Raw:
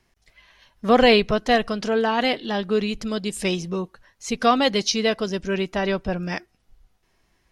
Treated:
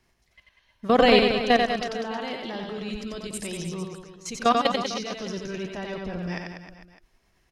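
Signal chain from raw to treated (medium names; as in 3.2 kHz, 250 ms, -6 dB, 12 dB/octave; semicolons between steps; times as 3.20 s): level held to a coarse grid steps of 17 dB; on a send: reverse bouncing-ball echo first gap 90 ms, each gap 1.15×, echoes 5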